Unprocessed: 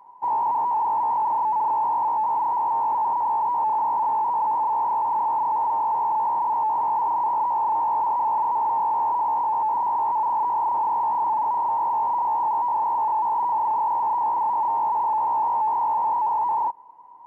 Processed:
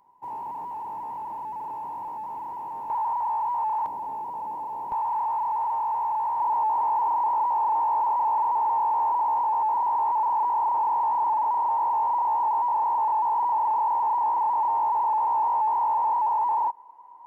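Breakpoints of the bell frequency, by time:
bell -12 dB 2.3 oct
900 Hz
from 2.9 s 290 Hz
from 3.86 s 1200 Hz
from 4.92 s 280 Hz
from 6.4 s 130 Hz

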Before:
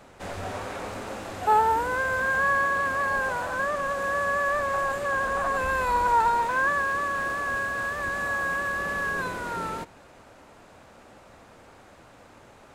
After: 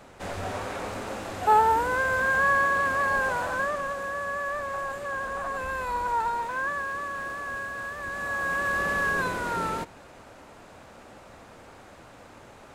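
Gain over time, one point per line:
3.49 s +1 dB
4.13 s -5.5 dB
8.02 s -5.5 dB
8.76 s +2.5 dB

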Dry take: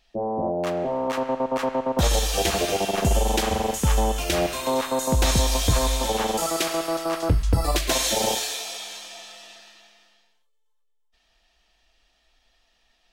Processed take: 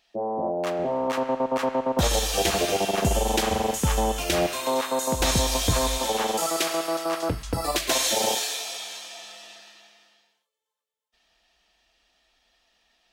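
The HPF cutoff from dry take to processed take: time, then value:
HPF 6 dB/oct
300 Hz
from 0.79 s 77 Hz
from 4.47 s 290 Hz
from 5.2 s 87 Hz
from 5.98 s 270 Hz
from 9.23 s 100 Hz

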